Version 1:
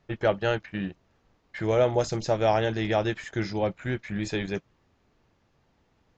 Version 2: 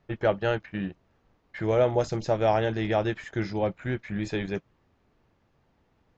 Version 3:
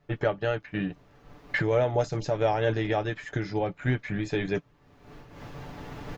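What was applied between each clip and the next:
high shelf 4100 Hz -8.5 dB
recorder AGC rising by 25 dB/s; comb 6.9 ms, depth 51%; noise-modulated level, depth 65%; gain +1.5 dB

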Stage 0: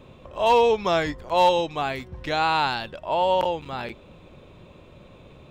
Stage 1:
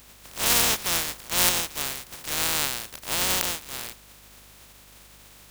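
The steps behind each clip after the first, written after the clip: spectral contrast lowered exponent 0.11; hum 50 Hz, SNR 29 dB; gain -3 dB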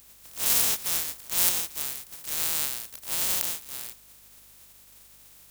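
high shelf 6000 Hz +11.5 dB; gain -9.5 dB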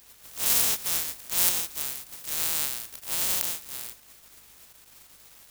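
bit-crush 8-bit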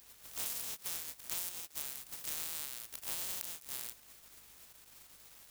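compressor 8:1, threshold -35 dBFS, peak gain reduction 18 dB; crossover distortion -49 dBFS

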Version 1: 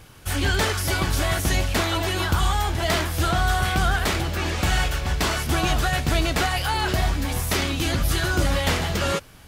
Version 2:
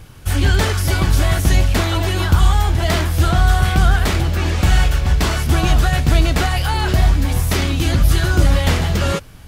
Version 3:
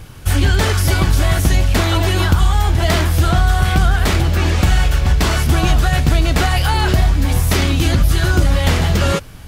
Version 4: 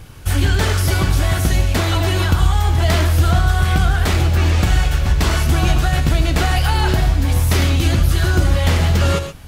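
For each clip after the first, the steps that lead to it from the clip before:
low shelf 200 Hz +9 dB; gain +2 dB
compressor 3:1, threshold -14 dBFS, peak gain reduction 6 dB; gain +4 dB
non-linear reverb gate 0.15 s rising, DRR 8 dB; gain -2.5 dB

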